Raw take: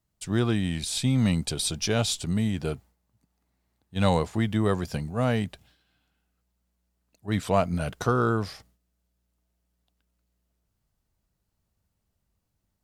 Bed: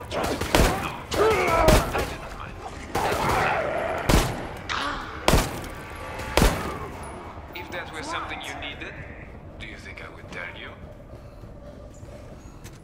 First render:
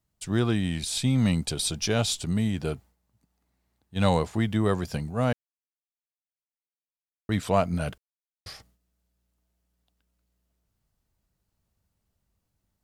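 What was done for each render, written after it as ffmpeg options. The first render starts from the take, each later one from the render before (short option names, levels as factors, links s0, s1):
-filter_complex "[0:a]asplit=5[s0][s1][s2][s3][s4];[s0]atrim=end=5.33,asetpts=PTS-STARTPTS,afade=t=out:st=5.326:d=0.004:c=hsin[s5];[s1]atrim=start=5.33:end=7.29,asetpts=PTS-STARTPTS,volume=0[s6];[s2]atrim=start=7.29:end=7.98,asetpts=PTS-STARTPTS,afade=t=in:d=0.004:c=hsin,afade=t=out:st=0.686:d=0.004:c=hsin[s7];[s3]atrim=start=7.98:end=8.46,asetpts=PTS-STARTPTS,volume=0[s8];[s4]atrim=start=8.46,asetpts=PTS-STARTPTS,afade=t=in:d=0.004:c=hsin[s9];[s5][s6][s7][s8][s9]concat=n=5:v=0:a=1"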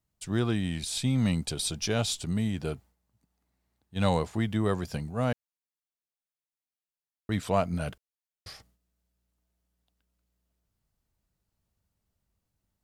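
-af "volume=0.708"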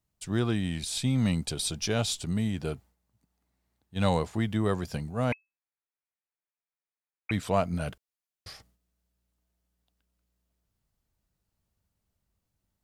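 -filter_complex "[0:a]asettb=1/sr,asplit=3[s0][s1][s2];[s0]atrim=end=5.324[s3];[s1]atrim=start=5.32:end=7.31,asetpts=PTS-STARTPTS,afade=t=in:d=0.004:c=qsin,afade=t=out:st=1.986:d=0.004:c=qsin,lowpass=f=2200:t=q:w=0.5098,lowpass=f=2200:t=q:w=0.6013,lowpass=f=2200:t=q:w=0.9,lowpass=f=2200:t=q:w=2.563,afreqshift=-2600[s4];[s2]atrim=start=7.306[s5];[s3][s4]acrossfade=d=0.004:c1=hsin:c2=qsin[s6];[s6][s5]acrossfade=d=0.004:c1=qsin:c2=hsin"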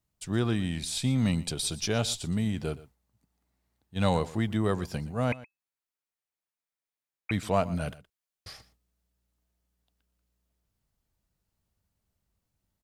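-af "aecho=1:1:119:0.119"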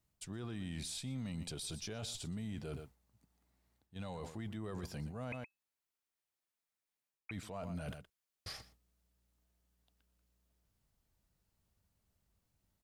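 -af "areverse,acompressor=threshold=0.0178:ratio=8,areverse,alimiter=level_in=3.35:limit=0.0631:level=0:latency=1:release=15,volume=0.299"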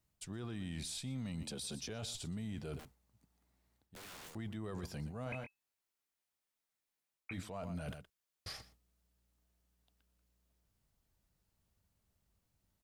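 -filter_complex "[0:a]asettb=1/sr,asplit=3[s0][s1][s2];[s0]atrim=end=1.434[s3];[s1]atrim=start=1.43:end=1.89,asetpts=PTS-STARTPTS,afade=t=in:d=0.004:c=qsin,afade=t=out:st=0.456:d=0.004:c=qsin,afreqshift=54[s4];[s2]atrim=start=1.886[s5];[s3][s4]acrossfade=d=0.004:c1=hsin:c2=qsin[s6];[s6][s5]acrossfade=d=0.004:c1=qsin:c2=hsin,asettb=1/sr,asplit=3[s7][s8][s9];[s7]atrim=end=2.794[s10];[s8]atrim=start=2.79:end=4.35,asetpts=PTS-STARTPTS,afade=t=in:d=0.004:c=qsin,afade=t=out:st=1.556:d=0.004:c=qsin,aeval=exprs='(mod(224*val(0)+1,2)-1)/224':c=same[s11];[s9]atrim=start=4.346[s12];[s10][s11]acrossfade=d=0.004:c1=hsin:c2=qsin[s13];[s13][s12]acrossfade=d=0.004:c1=qsin:c2=hsin,asettb=1/sr,asplit=3[s14][s15][s16];[s14]atrim=end=5.244[s17];[s15]atrim=start=5.24:end=7.43,asetpts=PTS-STARTPTS,afade=t=in:d=0.004:c=qsin,afade=t=out:st=2.186:d=0.004:c=qsin,asplit=2[s18][s19];[s19]adelay=22,volume=0.562[s20];[s18][s20]amix=inputs=2:normalize=0,atrim=end_sample=96579[s21];[s16]atrim=start=7.426[s22];[s17][s21]acrossfade=d=0.004:c1=hsin:c2=qsin[s23];[s23][s22]acrossfade=d=0.004:c1=qsin:c2=hsin"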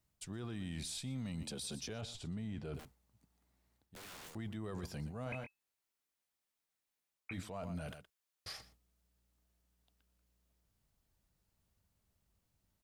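-filter_complex "[0:a]asettb=1/sr,asplit=3[s0][s1][s2];[s0]atrim=end=2.014[s3];[s1]atrim=start=2.01:end=2.75,asetpts=PTS-STARTPTS,afade=t=in:d=0.004:c=qsin,afade=t=out:st=0.736:d=0.004:c=qsin,aemphasis=mode=reproduction:type=50kf[s4];[s2]atrim=start=2.746[s5];[s3][s4]acrossfade=d=0.004:c1=hsin:c2=qsin[s6];[s6][s5]acrossfade=d=0.004:c1=qsin:c2=hsin,asettb=1/sr,asplit=3[s7][s8][s9];[s7]atrim=end=7.874[s10];[s8]atrim=start=7.87:end=8.62,asetpts=PTS-STARTPTS,afade=t=in:d=0.004:c=qsin,afade=t=out:st=0.746:d=0.004:c=qsin,lowshelf=f=320:g=-6.5[s11];[s9]atrim=start=8.616[s12];[s10][s11]acrossfade=d=0.004:c1=hsin:c2=qsin[s13];[s13][s12]acrossfade=d=0.004:c1=qsin:c2=hsin"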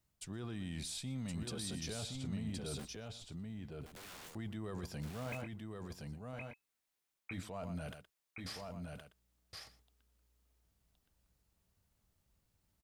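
-af "aecho=1:1:1069:0.668"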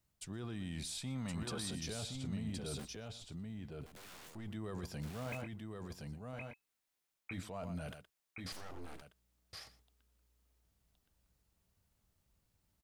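-filter_complex "[0:a]asettb=1/sr,asplit=3[s0][s1][s2];[s0]atrim=end=1.014[s3];[s1]atrim=start=1.01:end=1.71,asetpts=PTS-STARTPTS,afade=t=in:d=0.004:c=qsin,afade=t=out:st=0.696:d=0.004:c=qsin,equalizer=f=1100:w=0.91:g=9[s4];[s2]atrim=start=1.706[s5];[s3][s4]acrossfade=d=0.004:c1=hsin:c2=qsin[s6];[s6][s5]acrossfade=d=0.004:c1=qsin:c2=hsin,asettb=1/sr,asplit=3[s7][s8][s9];[s7]atrim=end=3.844[s10];[s8]atrim=start=3.84:end=4.48,asetpts=PTS-STARTPTS,afade=t=in:d=0.004:c=qsin,afade=t=out:st=0.636:d=0.004:c=qsin,aeval=exprs='if(lt(val(0),0),0.447*val(0),val(0))':c=same[s11];[s9]atrim=start=4.476[s12];[s10][s11]acrossfade=d=0.004:c1=hsin:c2=qsin[s13];[s13][s12]acrossfade=d=0.004:c1=qsin:c2=hsin,asettb=1/sr,asplit=3[s14][s15][s16];[s14]atrim=end=8.524[s17];[s15]atrim=start=8.52:end=9.02,asetpts=PTS-STARTPTS,afade=t=in:d=0.004:c=qsin,afade=t=out:st=0.496:d=0.004:c=qsin,aeval=exprs='abs(val(0))':c=same[s18];[s16]atrim=start=9.016[s19];[s17][s18]acrossfade=d=0.004:c1=hsin:c2=qsin[s20];[s20][s19]acrossfade=d=0.004:c1=qsin:c2=hsin"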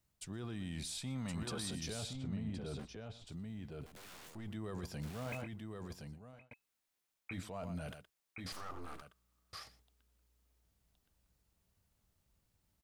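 -filter_complex "[0:a]asettb=1/sr,asplit=3[s0][s1][s2];[s0]atrim=end=2.134[s3];[s1]atrim=start=2.13:end=3.27,asetpts=PTS-STARTPTS,afade=t=in:d=0.004:c=qsin,afade=t=out:st=1.136:d=0.004:c=qsin,aemphasis=mode=reproduction:type=75kf[s4];[s2]atrim=start=3.266[s5];[s3][s4]acrossfade=d=0.004:c1=hsin:c2=qsin[s6];[s6][s5]acrossfade=d=0.004:c1=qsin:c2=hsin,asettb=1/sr,asplit=3[s7][s8][s9];[s7]atrim=end=8.534[s10];[s8]atrim=start=8.53:end=9.63,asetpts=PTS-STARTPTS,afade=t=in:d=0.004:c=qsin,afade=t=out:st=1.096:d=0.004:c=qsin,equalizer=f=1200:t=o:w=0.31:g=13[s11];[s9]atrim=start=9.626[s12];[s10][s11]acrossfade=d=0.004:c1=hsin:c2=qsin[s13];[s13][s12]acrossfade=d=0.004:c1=qsin:c2=hsin,asplit=2[s14][s15];[s14]atrim=end=6.51,asetpts=PTS-STARTPTS,afade=t=out:st=5.92:d=0.59[s16];[s15]atrim=start=6.51,asetpts=PTS-STARTPTS,afade=t=in:d=0.004:c=hsin[s17];[s16][s17]concat=n=2:v=0:a=1"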